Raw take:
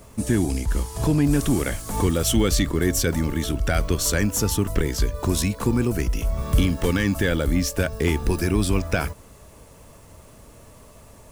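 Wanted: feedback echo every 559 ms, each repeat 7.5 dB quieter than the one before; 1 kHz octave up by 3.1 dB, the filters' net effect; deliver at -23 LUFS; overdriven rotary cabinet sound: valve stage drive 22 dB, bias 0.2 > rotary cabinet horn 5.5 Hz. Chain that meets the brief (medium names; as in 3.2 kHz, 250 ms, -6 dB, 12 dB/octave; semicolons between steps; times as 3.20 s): peaking EQ 1 kHz +4 dB; feedback delay 559 ms, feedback 42%, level -7.5 dB; valve stage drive 22 dB, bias 0.2; rotary cabinet horn 5.5 Hz; trim +6.5 dB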